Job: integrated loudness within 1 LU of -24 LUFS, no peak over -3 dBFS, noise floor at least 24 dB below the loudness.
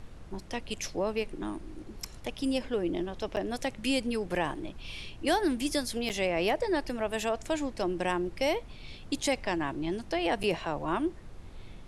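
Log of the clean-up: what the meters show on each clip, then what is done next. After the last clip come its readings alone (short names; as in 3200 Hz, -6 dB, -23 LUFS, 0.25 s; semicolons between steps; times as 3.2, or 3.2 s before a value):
dropouts 3; longest dropout 8.3 ms; noise floor -47 dBFS; noise floor target -56 dBFS; loudness -32.0 LUFS; peak -15.5 dBFS; loudness target -24.0 LUFS
-> interpolate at 3.36/6.09/10.43, 8.3 ms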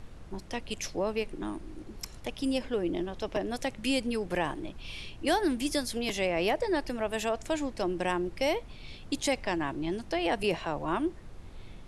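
dropouts 0; noise floor -47 dBFS; noise floor target -56 dBFS
-> noise print and reduce 9 dB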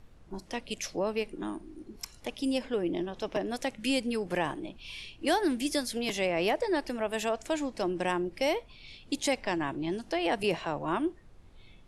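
noise floor -55 dBFS; noise floor target -56 dBFS
-> noise print and reduce 6 dB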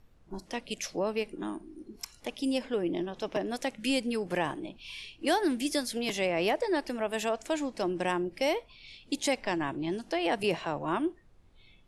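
noise floor -59 dBFS; loudness -31.5 LUFS; peak -15.5 dBFS; loudness target -24.0 LUFS
-> gain +7.5 dB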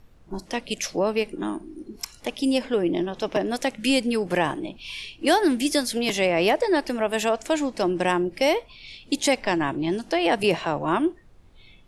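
loudness -24.0 LUFS; peak -8.0 dBFS; noise floor -51 dBFS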